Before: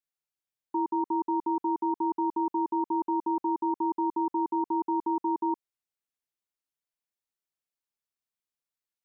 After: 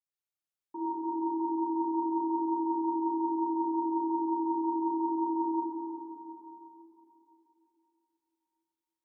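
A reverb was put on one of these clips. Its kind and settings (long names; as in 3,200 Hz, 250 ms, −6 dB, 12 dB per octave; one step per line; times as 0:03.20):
dense smooth reverb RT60 3.4 s, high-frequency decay 0.85×, DRR −8 dB
level −12 dB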